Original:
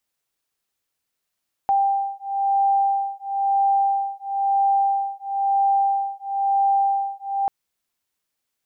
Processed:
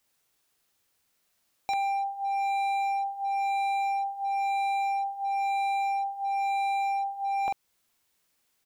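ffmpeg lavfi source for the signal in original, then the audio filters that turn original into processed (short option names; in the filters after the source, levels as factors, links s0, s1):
-f lavfi -i "aevalsrc='0.0891*(sin(2*PI*790*t)+sin(2*PI*791*t))':d=5.79:s=44100"
-filter_complex "[0:a]asplit=2[s0][s1];[s1]acompressor=threshold=0.0224:ratio=4,volume=0.891[s2];[s0][s2]amix=inputs=2:normalize=0,asplit=2[s3][s4];[s4]adelay=45,volume=0.562[s5];[s3][s5]amix=inputs=2:normalize=0,asoftclip=type=hard:threshold=0.0473"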